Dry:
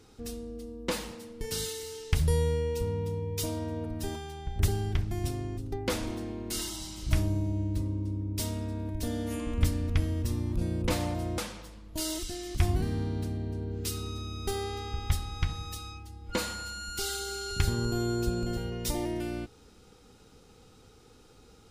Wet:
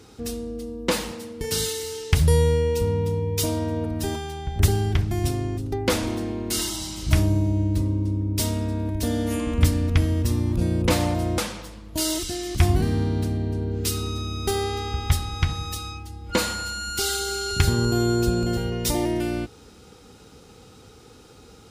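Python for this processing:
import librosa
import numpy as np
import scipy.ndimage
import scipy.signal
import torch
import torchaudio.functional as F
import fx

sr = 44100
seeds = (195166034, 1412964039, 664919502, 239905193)

y = scipy.signal.sosfilt(scipy.signal.butter(2, 50.0, 'highpass', fs=sr, output='sos'), x)
y = F.gain(torch.from_numpy(y), 8.5).numpy()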